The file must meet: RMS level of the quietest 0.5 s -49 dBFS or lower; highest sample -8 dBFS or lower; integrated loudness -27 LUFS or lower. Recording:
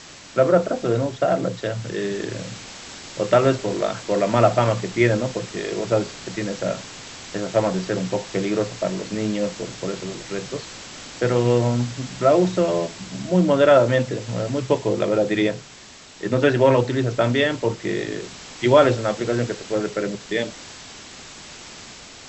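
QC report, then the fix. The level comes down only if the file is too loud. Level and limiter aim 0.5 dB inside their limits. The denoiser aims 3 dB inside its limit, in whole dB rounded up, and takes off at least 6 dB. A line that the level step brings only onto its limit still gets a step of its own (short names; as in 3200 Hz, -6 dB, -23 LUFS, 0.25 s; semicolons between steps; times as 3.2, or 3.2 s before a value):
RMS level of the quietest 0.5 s -44 dBFS: fail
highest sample -3.0 dBFS: fail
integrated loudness -21.5 LUFS: fail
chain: gain -6 dB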